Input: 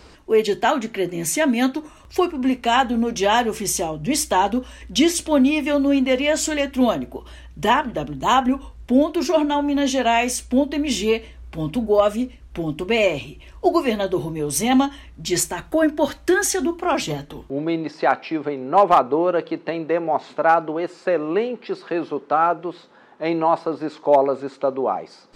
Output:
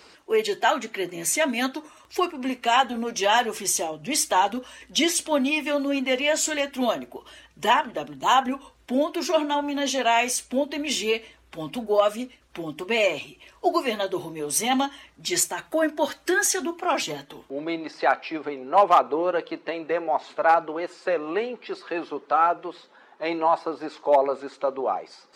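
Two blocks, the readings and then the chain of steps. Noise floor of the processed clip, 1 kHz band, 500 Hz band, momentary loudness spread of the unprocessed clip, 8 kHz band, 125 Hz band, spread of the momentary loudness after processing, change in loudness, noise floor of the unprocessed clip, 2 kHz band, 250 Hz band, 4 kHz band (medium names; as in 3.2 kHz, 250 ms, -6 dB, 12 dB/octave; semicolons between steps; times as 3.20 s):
-57 dBFS, -2.5 dB, -4.5 dB, 9 LU, -0.5 dB, -13.0 dB, 11 LU, -3.5 dB, -47 dBFS, -1.0 dB, -8.5 dB, -0.5 dB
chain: coarse spectral quantiser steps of 15 dB; high-pass 650 Hz 6 dB/octave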